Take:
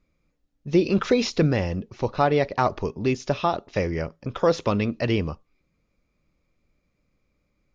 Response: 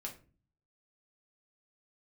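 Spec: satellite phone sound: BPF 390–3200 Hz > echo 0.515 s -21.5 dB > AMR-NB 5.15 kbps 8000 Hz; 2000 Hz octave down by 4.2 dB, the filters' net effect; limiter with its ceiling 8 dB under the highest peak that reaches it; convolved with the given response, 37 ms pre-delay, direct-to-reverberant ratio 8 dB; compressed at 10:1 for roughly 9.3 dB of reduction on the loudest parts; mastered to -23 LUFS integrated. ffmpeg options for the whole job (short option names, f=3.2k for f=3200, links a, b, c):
-filter_complex "[0:a]equalizer=f=2k:t=o:g=-4.5,acompressor=threshold=-24dB:ratio=10,alimiter=limit=-20.5dB:level=0:latency=1,asplit=2[a][b];[1:a]atrim=start_sample=2205,adelay=37[c];[b][c]afir=irnorm=-1:irlink=0,volume=-6dB[d];[a][d]amix=inputs=2:normalize=0,highpass=390,lowpass=3.2k,aecho=1:1:515:0.0841,volume=14.5dB" -ar 8000 -c:a libopencore_amrnb -b:a 5150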